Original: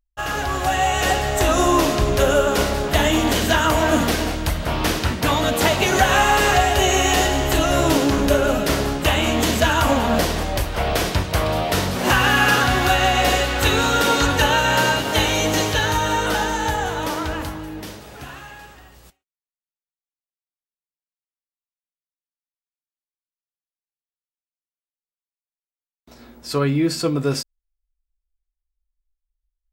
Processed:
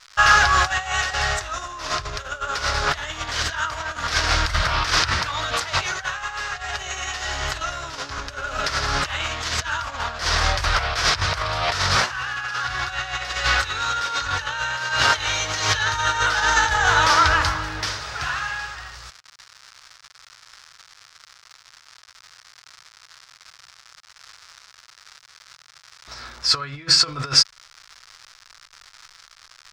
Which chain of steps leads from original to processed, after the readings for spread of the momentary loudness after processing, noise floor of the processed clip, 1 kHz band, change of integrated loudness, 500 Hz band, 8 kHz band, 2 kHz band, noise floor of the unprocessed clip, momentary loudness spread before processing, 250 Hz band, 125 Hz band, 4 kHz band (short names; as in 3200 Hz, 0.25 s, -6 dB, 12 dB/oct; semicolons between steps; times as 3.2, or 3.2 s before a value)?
12 LU, -52 dBFS, -2.5 dB, -2.5 dB, -12.5 dB, -2.0 dB, +0.5 dB, under -85 dBFS, 9 LU, -18.0 dB, -7.0 dB, +1.0 dB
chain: high shelf 9200 Hz -3.5 dB; crackle 280/s -40 dBFS; negative-ratio compressor -24 dBFS, ratio -0.5; EQ curve 120 Hz 0 dB, 220 Hz -16 dB, 820 Hz 0 dB, 1300 Hz +11 dB, 2900 Hz +4 dB, 5200 Hz +12 dB, 14000 Hz -15 dB; gain -1 dB